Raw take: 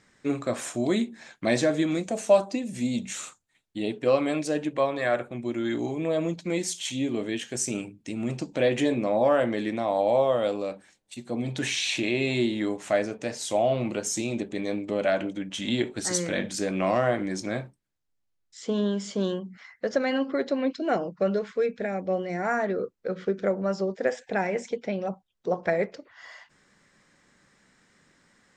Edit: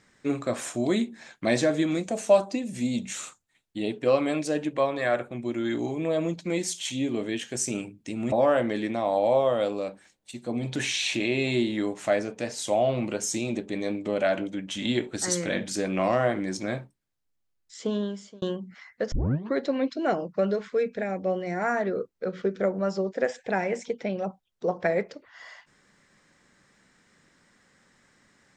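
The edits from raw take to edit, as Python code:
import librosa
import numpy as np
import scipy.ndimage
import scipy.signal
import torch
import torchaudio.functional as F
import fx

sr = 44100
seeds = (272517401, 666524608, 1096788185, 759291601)

y = fx.edit(x, sr, fx.cut(start_s=8.32, length_s=0.83),
    fx.fade_out_span(start_s=18.66, length_s=0.59),
    fx.tape_start(start_s=19.95, length_s=0.42), tone=tone)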